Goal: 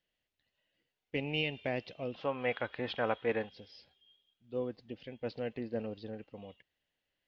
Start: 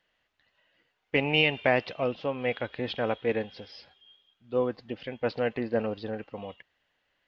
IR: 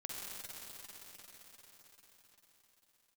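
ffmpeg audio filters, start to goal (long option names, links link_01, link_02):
-af "asetnsamples=nb_out_samples=441:pad=0,asendcmd='2.14 equalizer g 6.5;3.49 equalizer g -9.5',equalizer=frequency=1200:width_type=o:width=1.8:gain=-11.5,volume=-6.5dB"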